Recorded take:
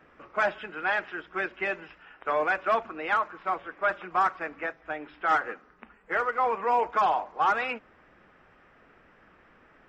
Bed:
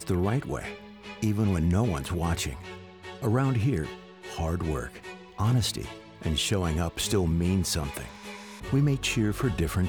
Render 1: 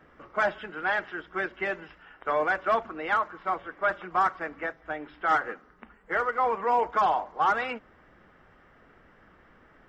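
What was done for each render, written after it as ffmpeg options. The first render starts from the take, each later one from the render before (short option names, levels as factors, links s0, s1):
-af "lowshelf=f=170:g=5.5,bandreject=f=2500:w=8.5"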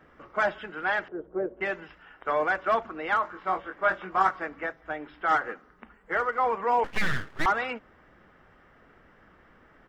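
-filter_complex "[0:a]asettb=1/sr,asplit=3[s0][s1][s2];[s0]atrim=end=1.084[s3];[s1]atrim=start=1.08:end=1.61,asetpts=PTS-STARTPTS,afade=t=in:d=0.004:c=qsin,afade=t=out:st=0.526:d=0.004:c=qsin,lowpass=f=510:t=q:w=2.8[s4];[s2]atrim=start=1.606[s5];[s3][s4]acrossfade=d=0.004:c1=hsin:c2=qsin[s6];[s6][s5]acrossfade=d=0.004:c1=qsin:c2=hsin,asplit=3[s7][s8][s9];[s7]afade=t=out:st=3.23:d=0.02[s10];[s8]asplit=2[s11][s12];[s12]adelay=21,volume=0.596[s13];[s11][s13]amix=inputs=2:normalize=0,afade=t=in:st=3.23:d=0.02,afade=t=out:st=4.44:d=0.02[s14];[s9]afade=t=in:st=4.44:d=0.02[s15];[s10][s14][s15]amix=inputs=3:normalize=0,asettb=1/sr,asplit=3[s16][s17][s18];[s16]atrim=end=6.844[s19];[s17]atrim=start=6.84:end=7.46,asetpts=PTS-STARTPTS,afade=t=in:d=0.004:c=qsin,afade=t=out:st=0.616:d=0.004:c=qsin,aeval=exprs='abs(val(0))':c=same[s20];[s18]atrim=start=7.456[s21];[s19][s20]acrossfade=d=0.004:c1=hsin:c2=qsin[s22];[s22][s21]acrossfade=d=0.004:c1=qsin:c2=hsin"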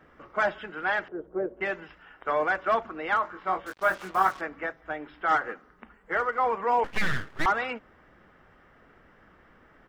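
-filter_complex "[0:a]asettb=1/sr,asplit=3[s0][s1][s2];[s0]atrim=end=3.664[s3];[s1]atrim=start=3.66:end=4.41,asetpts=PTS-STARTPTS,afade=t=in:d=0.004:c=qsin,afade=t=out:st=0.746:d=0.004:c=qsin,acrusher=bits=6:mix=0:aa=0.5[s4];[s2]atrim=start=4.406[s5];[s3][s4]acrossfade=d=0.004:c1=hsin:c2=qsin[s6];[s6][s5]acrossfade=d=0.004:c1=qsin:c2=hsin"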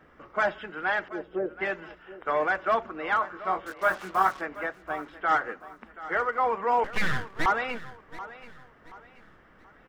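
-af "aecho=1:1:729|1458|2187:0.158|0.0571|0.0205"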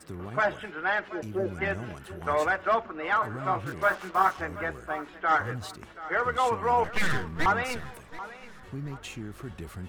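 -filter_complex "[1:a]volume=0.224[s0];[0:a][s0]amix=inputs=2:normalize=0"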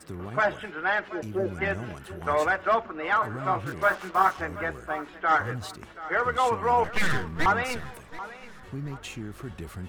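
-af "volume=1.19"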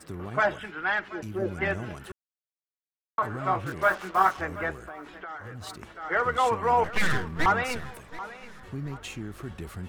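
-filter_complex "[0:a]asettb=1/sr,asplit=3[s0][s1][s2];[s0]atrim=end=0.584[s3];[s1]atrim=start=0.58:end=1.42,asetpts=PTS-STARTPTS,afade=t=in:d=0.004:c=qsin,afade=t=out:st=0.836:d=0.004:c=qsin,equalizer=f=540:t=o:w=1:g=-7[s4];[s2]atrim=start=1.416[s5];[s3][s4]acrossfade=d=0.004:c1=hsin:c2=qsin[s6];[s6][s5]acrossfade=d=0.004:c1=qsin:c2=hsin,asettb=1/sr,asplit=3[s7][s8][s9];[s7]atrim=end=4.744[s10];[s8]atrim=start=4.74:end=5.67,asetpts=PTS-STARTPTS,afade=t=in:d=0.004:c=qsin,afade=t=out:st=0.926:d=0.004:c=qsin,acompressor=threshold=0.0158:ratio=10:attack=3.2:release=140:knee=1:detection=peak[s11];[s9]atrim=start=5.666[s12];[s10][s11]acrossfade=d=0.004:c1=hsin:c2=qsin[s13];[s13][s12]acrossfade=d=0.004:c1=qsin:c2=hsin,asplit=3[s14][s15][s16];[s14]atrim=end=2.12,asetpts=PTS-STARTPTS,afade=t=out:st=2.116:d=0.004:c=hsin[s17];[s15]atrim=start=2.12:end=3.18,asetpts=PTS-STARTPTS,volume=0[s18];[s16]atrim=start=3.18,asetpts=PTS-STARTPTS,afade=t=in:d=0.004:c=hsin[s19];[s17][s18][s19]concat=n=3:v=0:a=1"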